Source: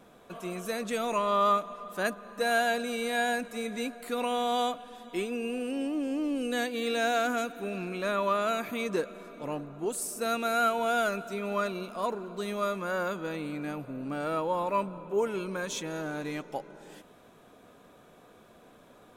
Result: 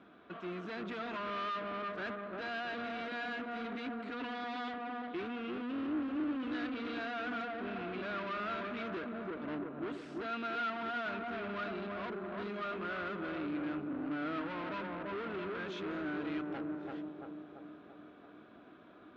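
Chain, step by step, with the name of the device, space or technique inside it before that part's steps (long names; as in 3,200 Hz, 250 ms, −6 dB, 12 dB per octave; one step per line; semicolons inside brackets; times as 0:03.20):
analogue delay pedal into a guitar amplifier (bucket-brigade delay 337 ms, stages 2,048, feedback 56%, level −4 dB; tube saturation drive 37 dB, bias 0.6; loudspeaker in its box 79–3,600 Hz, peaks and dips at 130 Hz −9 dB, 310 Hz +7 dB, 510 Hz −8 dB, 870 Hz −5 dB, 1,400 Hz +6 dB)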